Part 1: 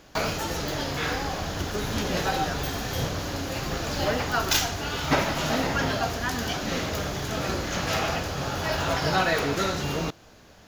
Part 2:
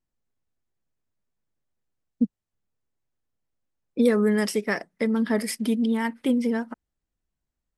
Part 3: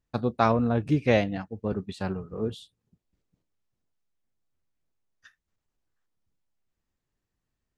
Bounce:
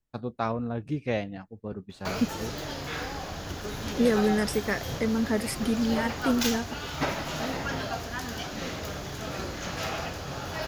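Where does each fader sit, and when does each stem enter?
-6.0, -3.0, -7.0 dB; 1.90, 0.00, 0.00 s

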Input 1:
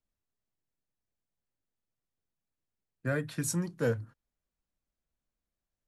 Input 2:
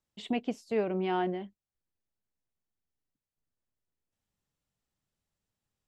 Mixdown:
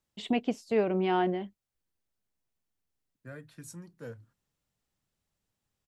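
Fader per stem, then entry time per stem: -14.0, +3.0 dB; 0.20, 0.00 s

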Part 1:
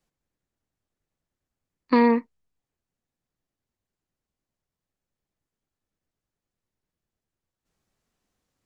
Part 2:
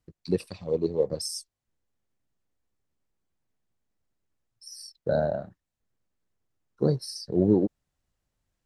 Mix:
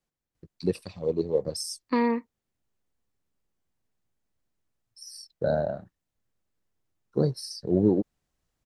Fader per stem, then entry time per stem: -6.0, -0.5 dB; 0.00, 0.35 s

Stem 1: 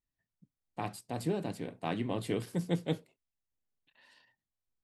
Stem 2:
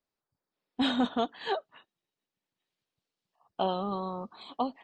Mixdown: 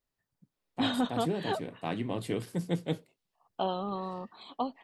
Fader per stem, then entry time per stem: +0.5, -2.0 dB; 0.00, 0.00 s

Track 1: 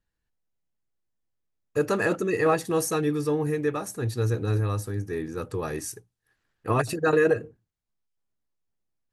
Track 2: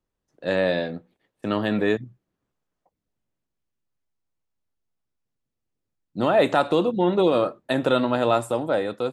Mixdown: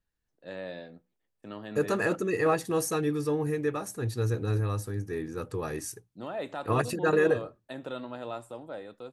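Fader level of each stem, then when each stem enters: -3.0, -17.0 dB; 0.00, 0.00 s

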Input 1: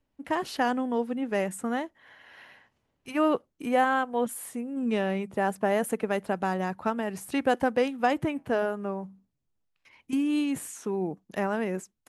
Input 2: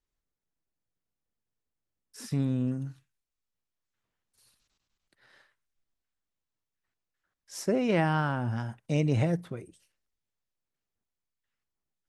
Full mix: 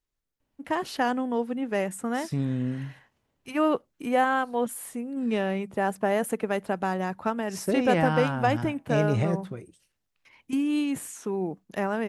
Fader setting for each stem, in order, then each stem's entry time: +0.5, +0.5 dB; 0.40, 0.00 s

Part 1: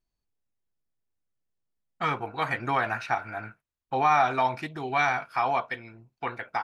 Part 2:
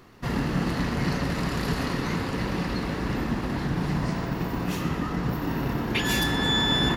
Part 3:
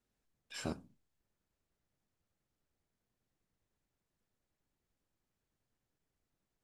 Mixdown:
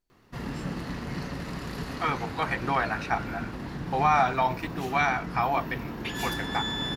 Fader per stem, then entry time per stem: -0.5, -8.0, -5.0 dB; 0.00, 0.10, 0.00 s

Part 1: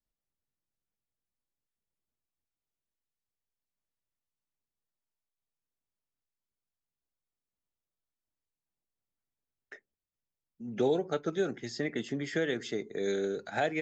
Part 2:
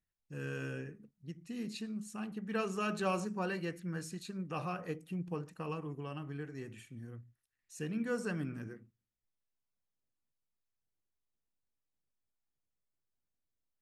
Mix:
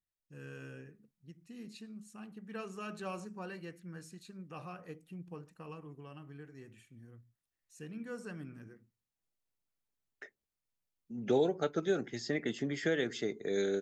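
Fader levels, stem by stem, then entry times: -1.0, -7.5 dB; 0.50, 0.00 s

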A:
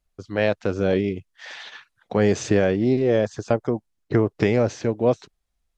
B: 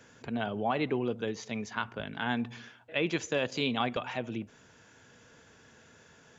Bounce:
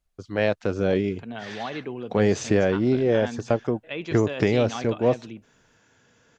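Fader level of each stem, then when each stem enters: -1.5, -3.0 dB; 0.00, 0.95 s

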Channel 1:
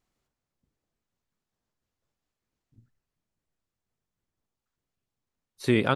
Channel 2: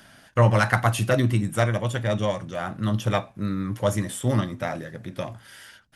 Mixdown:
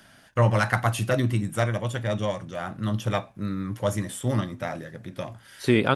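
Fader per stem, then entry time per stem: +2.5, -2.5 dB; 0.00, 0.00 s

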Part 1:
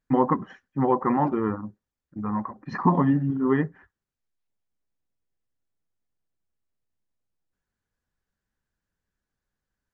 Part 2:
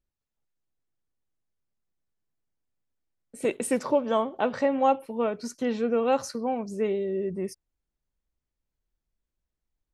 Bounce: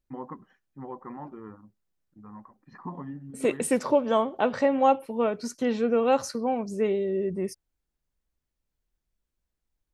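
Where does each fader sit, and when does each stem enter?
-17.5, +1.5 dB; 0.00, 0.00 s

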